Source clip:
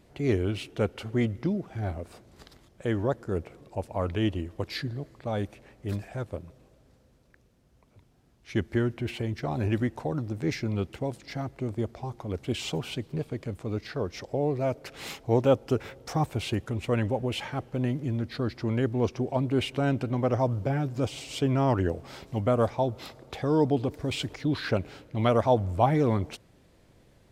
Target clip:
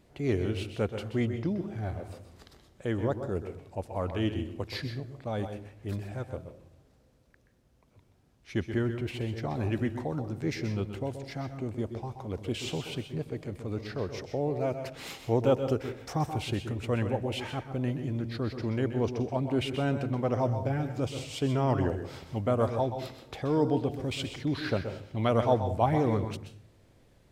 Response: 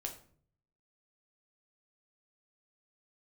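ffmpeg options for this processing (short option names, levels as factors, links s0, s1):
-filter_complex "[0:a]asplit=2[s0][s1];[1:a]atrim=start_sample=2205,adelay=127[s2];[s1][s2]afir=irnorm=-1:irlink=0,volume=0.447[s3];[s0][s3]amix=inputs=2:normalize=0,volume=0.708"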